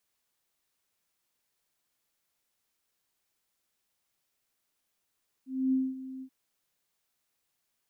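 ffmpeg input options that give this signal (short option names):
-f lavfi -i "aevalsrc='0.075*sin(2*PI*262*t)':d=0.832:s=44100,afade=t=in:d=0.264,afade=t=out:st=0.264:d=0.22:silence=0.168,afade=t=out:st=0.76:d=0.072"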